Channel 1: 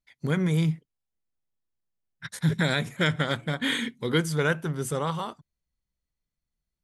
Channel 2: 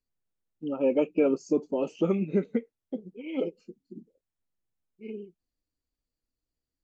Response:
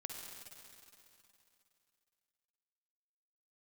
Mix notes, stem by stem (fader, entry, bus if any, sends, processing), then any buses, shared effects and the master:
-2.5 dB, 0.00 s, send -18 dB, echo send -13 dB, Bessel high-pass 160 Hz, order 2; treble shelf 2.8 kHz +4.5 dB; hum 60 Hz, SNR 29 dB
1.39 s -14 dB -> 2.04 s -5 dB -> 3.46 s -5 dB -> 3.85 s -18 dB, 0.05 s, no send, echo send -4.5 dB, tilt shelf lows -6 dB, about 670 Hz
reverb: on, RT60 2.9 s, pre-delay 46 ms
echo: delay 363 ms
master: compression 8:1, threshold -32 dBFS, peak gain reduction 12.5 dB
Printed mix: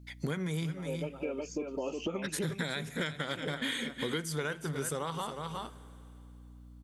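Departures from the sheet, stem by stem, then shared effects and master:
stem 1 -2.5 dB -> +7.0 dB; stem 2 -14.0 dB -> -5.0 dB

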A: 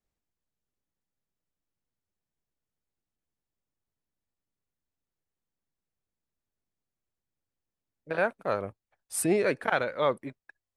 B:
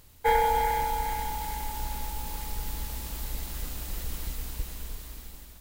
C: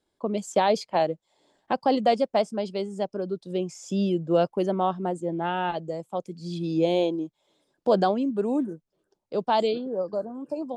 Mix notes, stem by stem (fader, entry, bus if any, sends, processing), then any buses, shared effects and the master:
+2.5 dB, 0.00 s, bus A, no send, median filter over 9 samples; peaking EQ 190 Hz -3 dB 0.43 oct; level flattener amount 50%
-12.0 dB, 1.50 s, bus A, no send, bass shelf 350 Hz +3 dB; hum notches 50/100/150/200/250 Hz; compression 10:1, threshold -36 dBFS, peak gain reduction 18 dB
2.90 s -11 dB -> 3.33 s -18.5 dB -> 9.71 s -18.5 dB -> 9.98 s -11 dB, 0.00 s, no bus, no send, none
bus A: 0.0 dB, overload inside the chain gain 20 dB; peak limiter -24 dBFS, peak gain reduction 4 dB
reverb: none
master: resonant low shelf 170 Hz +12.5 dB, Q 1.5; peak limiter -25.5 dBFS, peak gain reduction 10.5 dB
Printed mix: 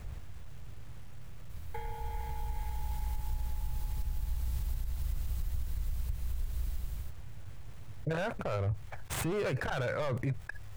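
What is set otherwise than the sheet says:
stem B -12.0 dB -> -5.0 dB; stem C: muted

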